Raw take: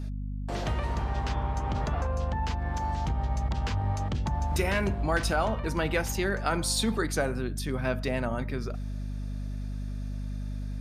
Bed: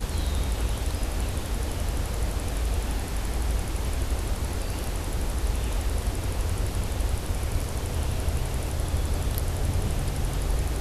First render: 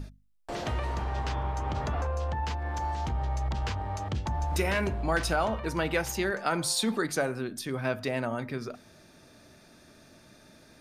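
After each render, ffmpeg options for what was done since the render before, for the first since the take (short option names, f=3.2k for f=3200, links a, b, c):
-af "bandreject=f=50:t=h:w=6,bandreject=f=100:t=h:w=6,bandreject=f=150:t=h:w=6,bandreject=f=200:t=h:w=6,bandreject=f=250:t=h:w=6"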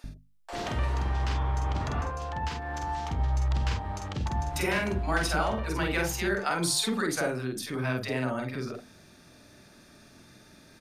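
-filter_complex "[0:a]asplit=2[a][b];[b]adelay=47,volume=-3.5dB[c];[a][c]amix=inputs=2:normalize=0,acrossover=split=590[d][e];[d]adelay=40[f];[f][e]amix=inputs=2:normalize=0"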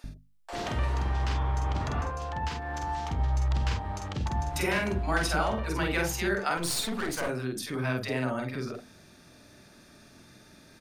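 -filter_complex "[0:a]asettb=1/sr,asplit=3[a][b][c];[a]atrim=end=6.574[d];[b]atrim=start=6.57:end=7.29,asetpts=PTS-STARTPTS,afade=t=in:d=0.004:c=qsin,afade=t=out:st=0.716:d=0.004:c=qsin,aeval=exprs='clip(val(0),-1,0.015)':c=same[e];[c]atrim=start=7.286[f];[d][e]acrossfade=d=0.004:c1=hsin:c2=qsin[g];[g][f]acrossfade=d=0.004:c1=qsin:c2=hsin"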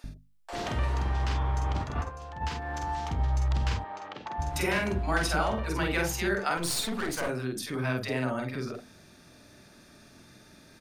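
-filter_complex "[0:a]asplit=3[a][b][c];[a]afade=t=out:st=1.81:d=0.02[d];[b]agate=range=-7dB:threshold=-31dB:ratio=16:release=100:detection=peak,afade=t=in:st=1.81:d=0.02,afade=t=out:st=2.4:d=0.02[e];[c]afade=t=in:st=2.4:d=0.02[f];[d][e][f]amix=inputs=3:normalize=0,asplit=3[g][h][i];[g]afade=t=out:st=3.83:d=0.02[j];[h]highpass=420,lowpass=3.2k,afade=t=in:st=3.83:d=0.02,afade=t=out:st=4.38:d=0.02[k];[i]afade=t=in:st=4.38:d=0.02[l];[j][k][l]amix=inputs=3:normalize=0"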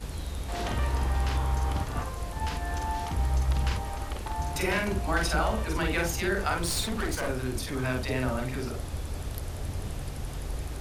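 -filter_complex "[1:a]volume=-8dB[a];[0:a][a]amix=inputs=2:normalize=0"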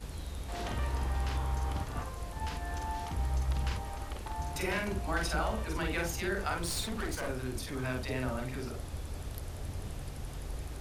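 -af "volume=-5.5dB"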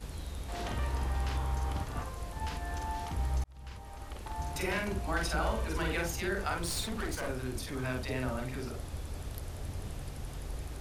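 -filter_complex "[0:a]asettb=1/sr,asplit=3[a][b][c];[a]atrim=end=5.384[d];[b]atrim=start=5.38:end=5.98,asetpts=PTS-STARTPTS,afade=t=in:d=0.004:c=qsin,afade=t=out:st=0.596:d=0.004:c=qsin,asplit=2[e][f];[f]adelay=49,volume=-5.5dB[g];[e][g]amix=inputs=2:normalize=0,atrim=end_sample=26460[h];[c]atrim=start=5.976[i];[d][h]acrossfade=d=0.004:c1=hsin:c2=qsin[j];[j][i]acrossfade=d=0.004:c1=qsin:c2=hsin,asplit=2[k][l];[k]atrim=end=3.44,asetpts=PTS-STARTPTS,afade=t=out:st=3.436:d=0.004:c=hsin[m];[l]atrim=start=3.44,asetpts=PTS-STARTPTS,afade=t=in:d=0.99[n];[m][n]concat=n=2:v=0:a=1"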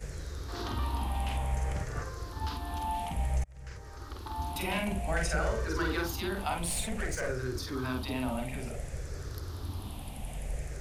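-af "afftfilt=real='re*pow(10,11/40*sin(2*PI*(0.53*log(max(b,1)*sr/1024/100)/log(2)-(-0.56)*(pts-256)/sr)))':imag='im*pow(10,11/40*sin(2*PI*(0.53*log(max(b,1)*sr/1024/100)/log(2)-(-0.56)*(pts-256)/sr)))':win_size=1024:overlap=0.75"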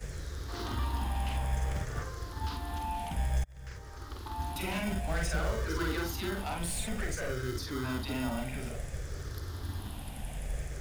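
-filter_complex "[0:a]acrossover=split=430[a][b];[a]acrusher=samples=26:mix=1:aa=0.000001[c];[b]asoftclip=type=tanh:threshold=-32dB[d];[c][d]amix=inputs=2:normalize=0"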